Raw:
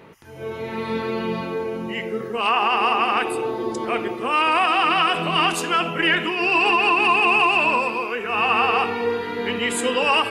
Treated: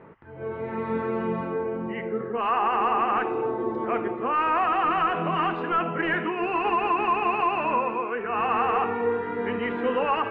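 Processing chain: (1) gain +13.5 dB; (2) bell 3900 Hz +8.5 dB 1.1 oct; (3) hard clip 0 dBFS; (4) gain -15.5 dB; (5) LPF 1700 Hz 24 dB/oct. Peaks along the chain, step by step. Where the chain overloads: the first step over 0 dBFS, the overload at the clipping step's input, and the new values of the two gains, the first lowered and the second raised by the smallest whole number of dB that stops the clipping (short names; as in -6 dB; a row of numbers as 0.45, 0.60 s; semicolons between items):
+6.0, +8.5, 0.0, -15.5, -14.0 dBFS; step 1, 8.5 dB; step 1 +4.5 dB, step 4 -6.5 dB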